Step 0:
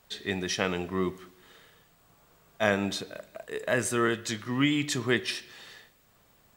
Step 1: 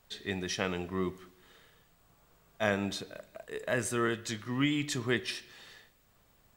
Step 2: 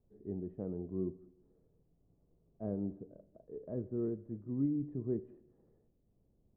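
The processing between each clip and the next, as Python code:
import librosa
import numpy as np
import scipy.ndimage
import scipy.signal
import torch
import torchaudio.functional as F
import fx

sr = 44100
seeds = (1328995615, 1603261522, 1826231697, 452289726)

y1 = fx.low_shelf(x, sr, hz=66.0, db=9.0)
y1 = F.gain(torch.from_numpy(y1), -4.5).numpy()
y2 = fx.ladder_lowpass(y1, sr, hz=520.0, resonance_pct=20)
y2 = F.gain(torch.from_numpy(y2), 1.0).numpy()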